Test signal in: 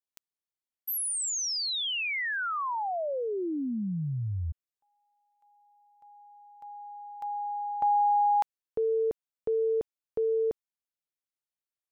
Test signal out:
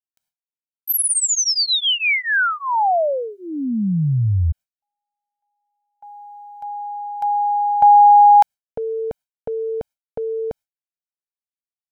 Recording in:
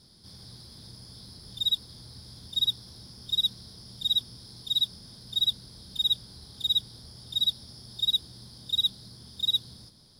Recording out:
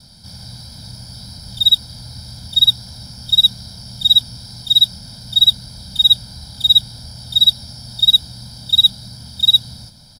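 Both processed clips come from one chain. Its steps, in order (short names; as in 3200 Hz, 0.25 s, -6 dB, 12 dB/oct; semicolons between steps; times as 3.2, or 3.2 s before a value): gate with hold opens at -54 dBFS, range -26 dB; comb 1.3 ms, depth 100%; gain +9 dB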